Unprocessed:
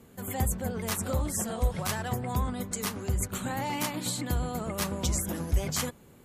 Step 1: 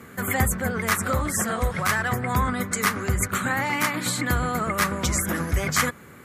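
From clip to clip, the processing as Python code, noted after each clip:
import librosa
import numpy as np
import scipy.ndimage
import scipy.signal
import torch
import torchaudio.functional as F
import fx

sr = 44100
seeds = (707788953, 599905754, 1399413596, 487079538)

y = scipy.signal.sosfilt(scipy.signal.butter(2, 68.0, 'highpass', fs=sr, output='sos'), x)
y = fx.band_shelf(y, sr, hz=1600.0, db=10.5, octaves=1.2)
y = fx.rider(y, sr, range_db=10, speed_s=0.5)
y = y * 10.0 ** (5.5 / 20.0)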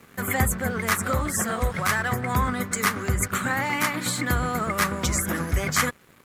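y = np.sign(x) * np.maximum(np.abs(x) - 10.0 ** (-46.0 / 20.0), 0.0)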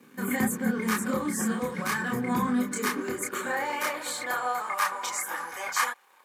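y = fx.notch_comb(x, sr, f0_hz=670.0)
y = fx.chorus_voices(y, sr, voices=6, hz=0.95, base_ms=28, depth_ms=4.7, mix_pct=45)
y = fx.filter_sweep_highpass(y, sr, from_hz=230.0, to_hz=830.0, start_s=2.63, end_s=4.64, q=2.8)
y = y * 10.0 ** (-1.5 / 20.0)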